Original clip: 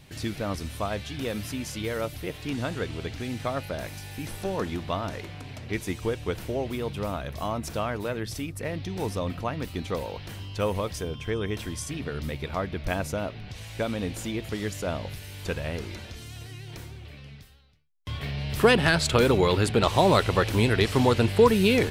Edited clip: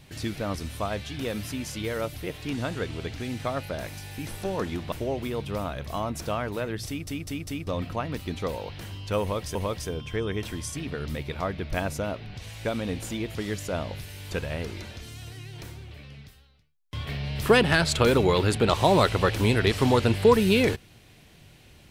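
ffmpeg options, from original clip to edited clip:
-filter_complex "[0:a]asplit=7[a][b][c][d][e][f][g];[a]atrim=end=4.922[h];[b]atrim=start=6.398:end=8.552[i];[c]atrim=start=8.348:end=8.552[j];[d]atrim=start=8.348:end=8.552[k];[e]atrim=start=8.348:end=8.552[l];[f]atrim=start=9.148:end=11.032[m];[g]atrim=start=10.688[n];[h][i]acrossfade=d=0.004:c1=hsin:c2=hsin[o];[o][j]acrossfade=d=0.004:c1=hsin:c2=hsin[p];[p][k]acrossfade=d=0.004:c1=hsin:c2=hsin[q];[q][l]acrossfade=d=0.004:c1=hsin:c2=hsin[r];[r][m]acrossfade=d=0.004:c1=hsin:c2=hsin[s];[s][n]acrossfade=d=0.004:c1=hsin:c2=hsin"

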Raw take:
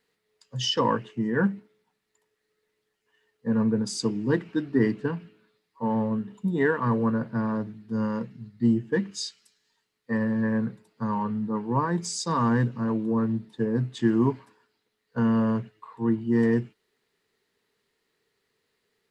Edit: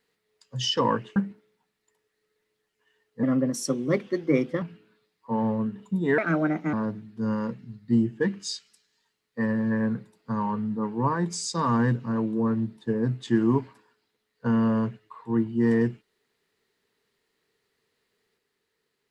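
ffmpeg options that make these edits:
-filter_complex "[0:a]asplit=6[a][b][c][d][e][f];[a]atrim=end=1.162[g];[b]atrim=start=1.428:end=3.504[h];[c]atrim=start=3.5:end=5.14,asetpts=PTS-STARTPTS,asetrate=52038,aresample=44100[i];[d]atrim=start=5.136:end=6.704[j];[e]atrim=start=6.7:end=7.45,asetpts=PTS-STARTPTS,asetrate=59976,aresample=44100[k];[f]atrim=start=7.446[l];[g][h]acrossfade=d=0.004:c1=hsin:c2=hsin[m];[m][i]acrossfade=d=0.004:c1=hsin:c2=hsin[n];[n][j]acrossfade=d=0.004:c1=hsin:c2=hsin[o];[o][k]acrossfade=d=0.004:c1=hsin:c2=hsin[p];[p][l]acrossfade=d=0.004:c1=hsin:c2=hsin"

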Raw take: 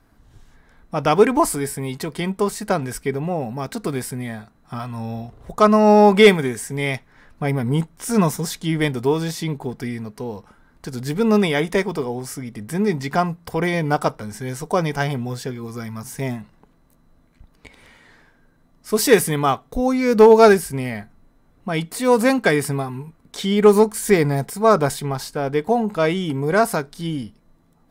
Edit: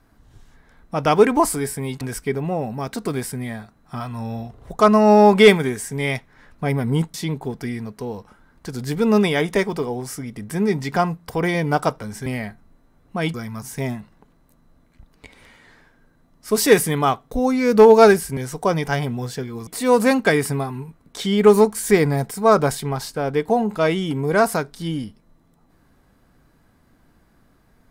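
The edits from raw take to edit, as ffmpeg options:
-filter_complex "[0:a]asplit=7[a][b][c][d][e][f][g];[a]atrim=end=2.012[h];[b]atrim=start=2.798:end=7.932[i];[c]atrim=start=9.328:end=14.452[j];[d]atrim=start=20.778:end=21.862[k];[e]atrim=start=15.748:end=20.782[l];[f]atrim=start=14.448:end=15.752[m];[g]atrim=start=21.858[n];[h][i]acrossfade=d=0.004:c1=hsin:c2=hsin[o];[o][j]acrossfade=d=0.004:c1=hsin:c2=hsin[p];[p][k]acrossfade=d=0.004:c1=hsin:c2=hsin[q];[q][l]acrossfade=d=0.004:c1=hsin:c2=hsin[r];[r][m]acrossfade=d=0.004:c1=hsin:c2=hsin[s];[s][n]acrossfade=d=0.004:c1=hsin:c2=hsin"

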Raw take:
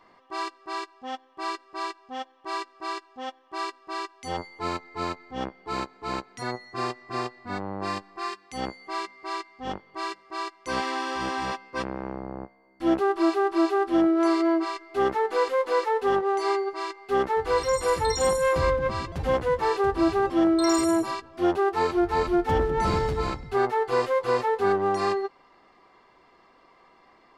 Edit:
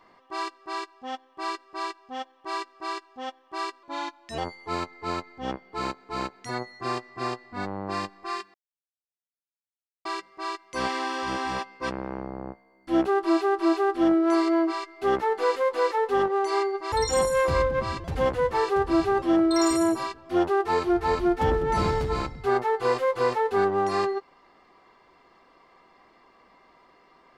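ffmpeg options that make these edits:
-filter_complex "[0:a]asplit=6[a][b][c][d][e][f];[a]atrim=end=3.834[g];[b]atrim=start=3.83:end=4.31,asetpts=PTS-STARTPTS,asetrate=38367,aresample=44100,atrim=end_sample=24331,asetpts=PTS-STARTPTS[h];[c]atrim=start=4.306:end=8.47,asetpts=PTS-STARTPTS,afade=t=out:st=4.16:d=0.004:c=hsin[i];[d]atrim=start=8.47:end=9.98,asetpts=PTS-STARTPTS,volume=0[j];[e]atrim=start=9.98:end=16.852,asetpts=PTS-STARTPTS,afade=t=in:d=0.004:c=hsin[k];[f]atrim=start=17.998[l];[g][h]acrossfade=d=0.004:c1=hsin:c2=hsin[m];[i][j][k]concat=n=3:v=0:a=1[n];[m][n]acrossfade=d=0.004:c1=hsin:c2=hsin[o];[o][l]acrossfade=d=0.004:c1=hsin:c2=hsin"

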